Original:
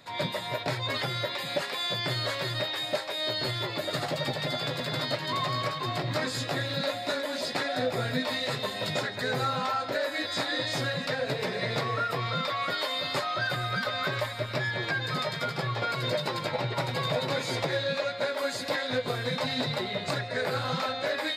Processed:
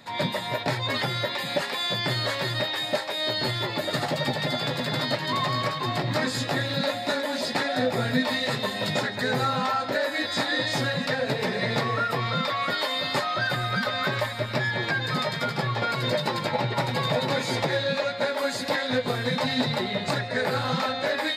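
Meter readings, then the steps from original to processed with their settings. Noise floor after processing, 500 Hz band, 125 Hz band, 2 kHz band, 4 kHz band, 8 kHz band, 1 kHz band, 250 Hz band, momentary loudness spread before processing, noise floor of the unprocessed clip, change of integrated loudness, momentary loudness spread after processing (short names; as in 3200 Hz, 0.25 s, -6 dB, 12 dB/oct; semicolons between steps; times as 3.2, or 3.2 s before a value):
-33 dBFS, +3.0 dB, +4.0 dB, +4.0 dB, +3.0 dB, +3.0 dB, +4.0 dB, +6.0 dB, 2 LU, -36 dBFS, +3.5 dB, 2 LU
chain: small resonant body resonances 220/860/1800 Hz, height 7 dB; gain +3 dB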